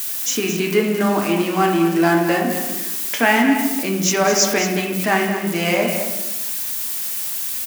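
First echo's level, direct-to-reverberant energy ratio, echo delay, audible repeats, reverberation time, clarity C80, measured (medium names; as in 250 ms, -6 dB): -9.0 dB, 0.0 dB, 218 ms, 1, 1.0 s, 5.0 dB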